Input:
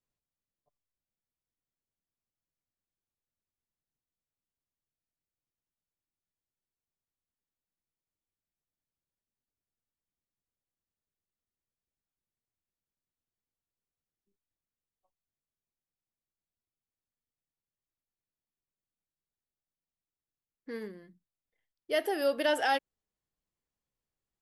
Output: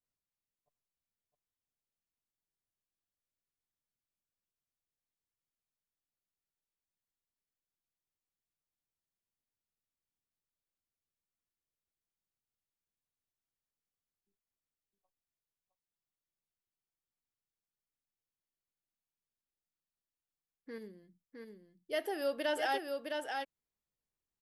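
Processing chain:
0:20.78–0:21.93: parametric band 1,300 Hz −11 dB 1.8 octaves
single-tap delay 661 ms −4.5 dB
level −6 dB

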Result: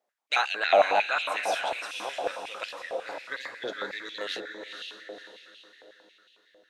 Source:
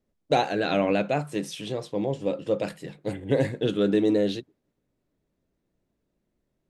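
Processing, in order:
0:02.64–0:04.21: phaser with its sweep stopped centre 2,800 Hz, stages 6
feedback delay with all-pass diffusion 503 ms, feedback 45%, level −5.5 dB
high-pass on a step sequencer 11 Hz 720–2,800 Hz

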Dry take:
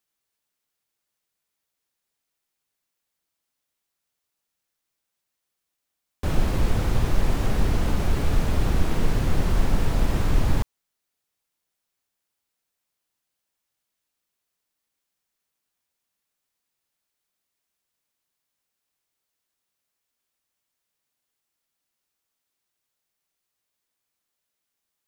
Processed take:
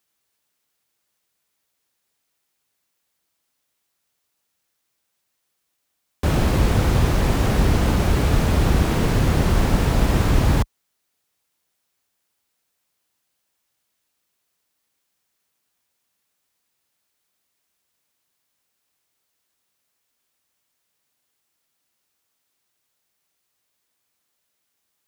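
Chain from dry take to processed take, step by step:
high-pass filter 43 Hz
level +7 dB

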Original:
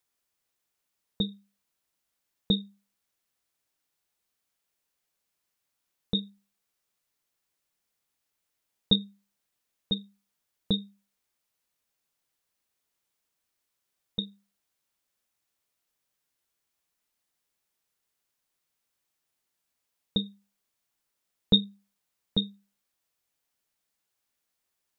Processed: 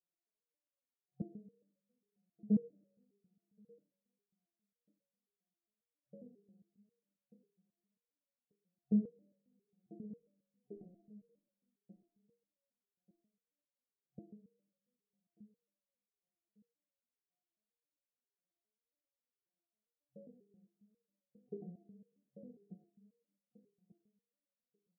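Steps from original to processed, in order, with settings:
one-sided soft clipper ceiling −19.5 dBFS
brick-wall band-pass 130–740 Hz
0:10.03–0:10.77: comb filter 3.2 ms, depth 56%
on a send: repeating echo 1,188 ms, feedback 24%, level −19.5 dB
on the sum: coupled-rooms reverb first 0.74 s, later 2.3 s, from −20 dB, DRR 2 dB
step-sequenced resonator 7.4 Hz 180–560 Hz
level +4.5 dB

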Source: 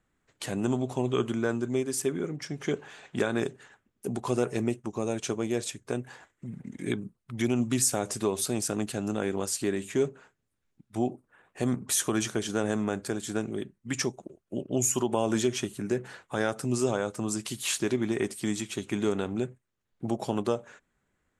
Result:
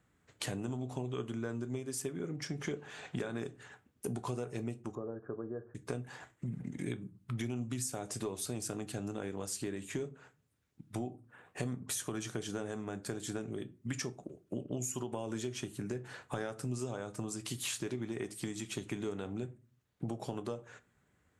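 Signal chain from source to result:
high-pass filter 59 Hz
parametric band 88 Hz +6 dB 1.3 octaves
downward compressor 6 to 1, threshold −38 dBFS, peak gain reduction 17 dB
0:04.95–0:05.75: Chebyshev low-pass with heavy ripple 1,700 Hz, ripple 6 dB
rectangular room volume 160 cubic metres, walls furnished, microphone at 0.39 metres
level +2 dB

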